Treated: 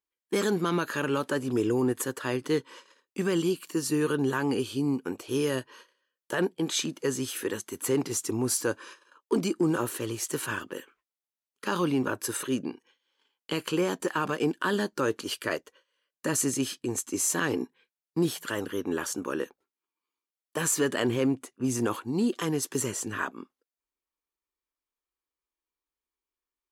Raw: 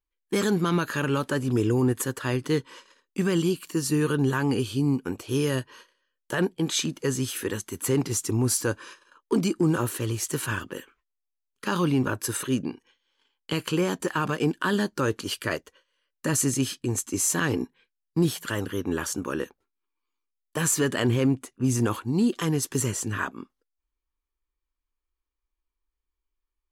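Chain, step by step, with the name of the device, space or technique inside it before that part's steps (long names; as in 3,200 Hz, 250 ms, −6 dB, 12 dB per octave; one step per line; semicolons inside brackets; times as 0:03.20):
filter by subtraction (in parallel: low-pass filter 400 Hz 12 dB per octave + polarity inversion)
on the sum: level −2.5 dB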